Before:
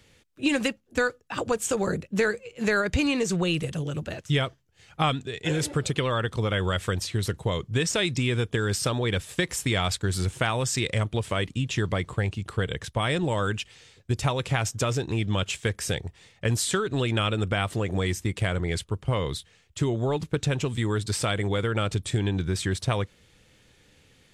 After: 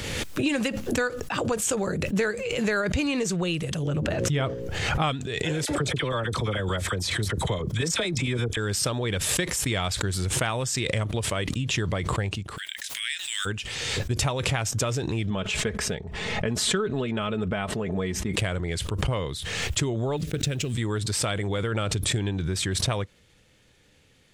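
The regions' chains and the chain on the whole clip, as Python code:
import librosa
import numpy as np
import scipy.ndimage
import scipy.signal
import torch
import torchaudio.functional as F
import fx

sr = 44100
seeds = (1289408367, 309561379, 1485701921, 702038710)

y = fx.chain(x, sr, fx.high_shelf(hz=2600.0, db=-10.5),
    fx.hum_notches(base_hz=60, count=9),
    fx.env_flatten(amount_pct=70), at=(3.87, 5.02))
y = fx.chain(y, sr, fx.notch(hz=2800.0, q=9.7),
    fx.chopper(hz=8.9, depth_pct=60, duty_pct=85),
    fx.dispersion(late='lows', ms=44.0, hz=1100.0), at=(5.65, 8.57))
y = fx.steep_highpass(y, sr, hz=1700.0, slope=48, at=(12.56, 13.45), fade=0.02)
y = fx.high_shelf(y, sr, hz=4600.0, db=7.0, at=(12.56, 13.45), fade=0.02)
y = fx.dmg_noise_colour(y, sr, seeds[0], colour='white', level_db=-65.0, at=(12.56, 13.45), fade=0.02)
y = fx.chain(y, sr, fx.lowpass(hz=1600.0, slope=6),
    fx.comb(ms=4.7, depth=0.56), at=(15.3, 18.33))
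y = fx.chain(y, sr, fx.law_mismatch(coded='A'),
    fx.peak_eq(hz=940.0, db=-14.0, octaves=0.88), at=(20.17, 20.74))
y = fx.peak_eq(y, sr, hz=600.0, db=2.0, octaves=0.23)
y = fx.pre_swell(y, sr, db_per_s=27.0)
y = F.gain(torch.from_numpy(y), -2.0).numpy()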